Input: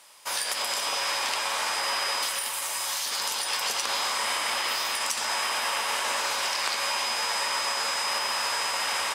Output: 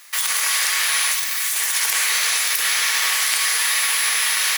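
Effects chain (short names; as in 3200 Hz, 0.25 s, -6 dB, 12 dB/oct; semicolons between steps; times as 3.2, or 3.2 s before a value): HPF 190 Hz 24 dB/oct; speed mistake 7.5 ips tape played at 15 ips; gain +8.5 dB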